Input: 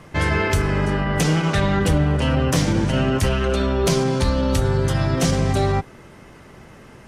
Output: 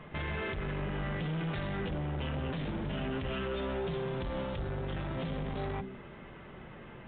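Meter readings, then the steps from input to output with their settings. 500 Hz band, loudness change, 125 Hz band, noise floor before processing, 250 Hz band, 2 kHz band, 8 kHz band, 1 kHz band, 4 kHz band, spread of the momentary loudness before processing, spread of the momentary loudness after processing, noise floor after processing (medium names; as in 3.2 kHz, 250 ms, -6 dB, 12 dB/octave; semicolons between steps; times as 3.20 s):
-15.0 dB, -16.0 dB, -16.5 dB, -45 dBFS, -16.0 dB, -15.0 dB, under -40 dB, -15.5 dB, -16.5 dB, 2 LU, 14 LU, -49 dBFS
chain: de-hum 64.68 Hz, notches 6; dynamic bell 1 kHz, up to -3 dB, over -34 dBFS, Q 0.87; peak limiter -16.5 dBFS, peak gain reduction 8.5 dB; saturation -28 dBFS, distortion -9 dB; flange 0.35 Hz, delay 4.7 ms, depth 1.2 ms, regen -63%; µ-law 64 kbps 8 kHz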